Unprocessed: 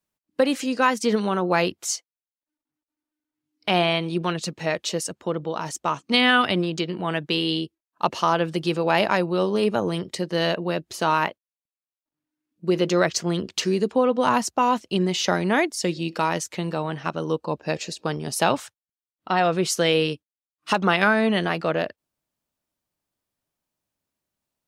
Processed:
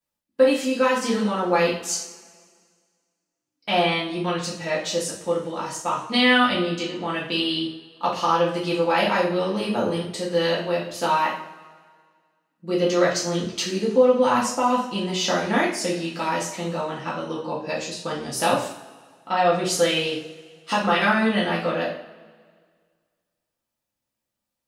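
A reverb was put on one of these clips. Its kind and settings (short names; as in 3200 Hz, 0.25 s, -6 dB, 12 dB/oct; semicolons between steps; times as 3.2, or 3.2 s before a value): two-slope reverb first 0.51 s, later 1.9 s, from -19 dB, DRR -6.5 dB; gain -7 dB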